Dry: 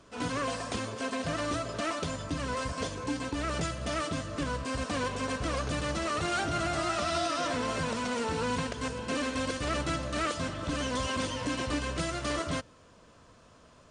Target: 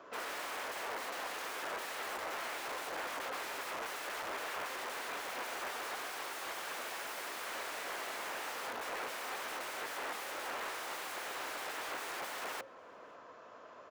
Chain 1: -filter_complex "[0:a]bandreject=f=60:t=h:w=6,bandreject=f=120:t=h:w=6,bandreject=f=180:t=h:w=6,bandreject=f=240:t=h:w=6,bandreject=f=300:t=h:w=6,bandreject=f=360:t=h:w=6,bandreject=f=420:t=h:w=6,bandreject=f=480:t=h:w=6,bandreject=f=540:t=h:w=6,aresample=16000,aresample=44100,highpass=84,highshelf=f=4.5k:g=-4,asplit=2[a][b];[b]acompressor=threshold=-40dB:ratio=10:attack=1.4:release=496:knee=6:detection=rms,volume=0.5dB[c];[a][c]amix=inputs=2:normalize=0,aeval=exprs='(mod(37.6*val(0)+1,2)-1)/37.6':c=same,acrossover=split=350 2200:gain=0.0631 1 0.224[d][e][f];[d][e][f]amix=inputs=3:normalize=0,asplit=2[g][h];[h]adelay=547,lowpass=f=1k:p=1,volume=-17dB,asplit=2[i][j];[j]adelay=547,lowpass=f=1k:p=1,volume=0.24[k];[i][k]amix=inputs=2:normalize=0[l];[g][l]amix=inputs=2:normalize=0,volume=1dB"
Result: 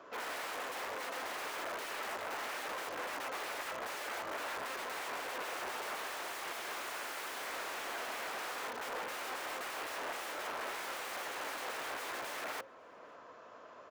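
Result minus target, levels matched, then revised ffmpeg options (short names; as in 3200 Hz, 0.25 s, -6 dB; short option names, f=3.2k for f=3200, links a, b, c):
compressor: peak gain reduction +6.5 dB
-filter_complex "[0:a]bandreject=f=60:t=h:w=6,bandreject=f=120:t=h:w=6,bandreject=f=180:t=h:w=6,bandreject=f=240:t=h:w=6,bandreject=f=300:t=h:w=6,bandreject=f=360:t=h:w=6,bandreject=f=420:t=h:w=6,bandreject=f=480:t=h:w=6,bandreject=f=540:t=h:w=6,aresample=16000,aresample=44100,highpass=84,highshelf=f=4.5k:g=-4,asplit=2[a][b];[b]acompressor=threshold=-33dB:ratio=10:attack=1.4:release=496:knee=6:detection=rms,volume=0.5dB[c];[a][c]amix=inputs=2:normalize=0,aeval=exprs='(mod(37.6*val(0)+1,2)-1)/37.6':c=same,acrossover=split=350 2200:gain=0.0631 1 0.224[d][e][f];[d][e][f]amix=inputs=3:normalize=0,asplit=2[g][h];[h]adelay=547,lowpass=f=1k:p=1,volume=-17dB,asplit=2[i][j];[j]adelay=547,lowpass=f=1k:p=1,volume=0.24[k];[i][k]amix=inputs=2:normalize=0[l];[g][l]amix=inputs=2:normalize=0,volume=1dB"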